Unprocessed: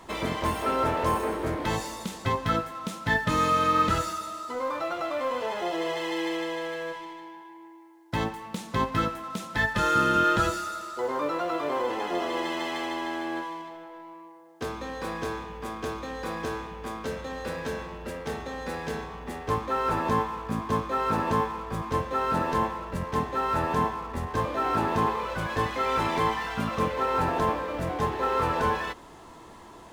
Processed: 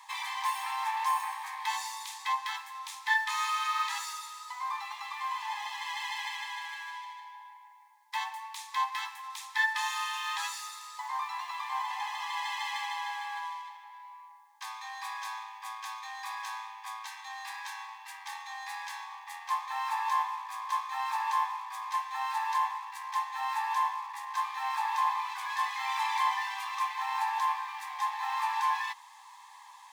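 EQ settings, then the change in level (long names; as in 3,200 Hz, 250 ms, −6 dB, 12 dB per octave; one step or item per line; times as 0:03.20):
Chebyshev high-pass filter 790 Hz, order 10
Butterworth band-reject 1,400 Hz, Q 3.2
notch filter 2,900 Hz, Q 16
0.0 dB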